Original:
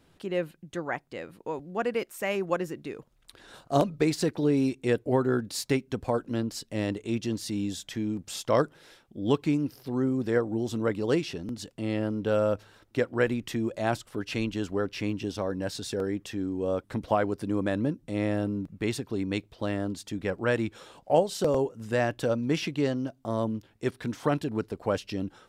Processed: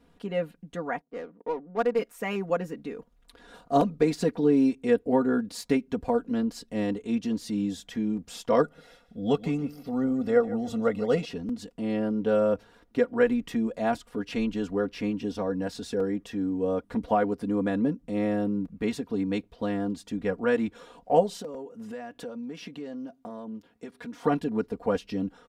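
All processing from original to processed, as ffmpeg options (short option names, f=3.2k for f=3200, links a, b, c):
-filter_complex "[0:a]asettb=1/sr,asplit=3[a][b][c];[a]atrim=end=1.014[d];[b]atrim=start=1.01:end=1.99,asetpts=PTS-STARTPTS,afade=t=in:d=0.004:c=qsin,afade=t=out:st=0.976:d=0.004:c=qsin,highpass=250,adynamicsmooth=sensitivity=6:basefreq=530[e];[c]atrim=start=1.986[f];[d][e]acrossfade=d=0.004:c1=hsin:c2=qsin[g];[g][f]acrossfade=d=0.004:c1=qsin:c2=hsin,asettb=1/sr,asplit=3[h][i][j];[h]atrim=end=8.634[k];[i]atrim=start=8.63:end=11.25,asetpts=PTS-STARTPTS,afade=t=in:d=0.004:c=qsin,afade=t=out:st=2.616:d=0.004:c=qsin,aecho=1:1:1.5:0.57,atrim=end_sample=115542,aecho=1:1:150|300|450:0.158|0.0412|0.0107,atrim=end_sample=115542[l];[j]atrim=start=11.246[m];[k][l]acrossfade=d=0.004:c1=hsin:c2=qsin[n];[n][m]acrossfade=d=0.004:c1=qsin:c2=hsin,asettb=1/sr,asplit=3[o][p][q];[o]atrim=end=21.404[r];[p]atrim=start=21.4:end=24.25,asetpts=PTS-STARTPTS,afade=t=in:d=0.004:c=qsin,afade=t=out:st=2.846:d=0.004:c=qsin,acompressor=threshold=-35dB:ratio=8:attack=3.2:release=140:knee=1:detection=peak,highpass=f=170:p=1[s];[q]atrim=start=24.246[t];[r][s]acrossfade=d=0.004:c1=hsin:c2=qsin[u];[u][t]acrossfade=d=0.004:c1=qsin:c2=hsin,highshelf=f=2.1k:g=-8.5,aecho=1:1:4.2:0.81"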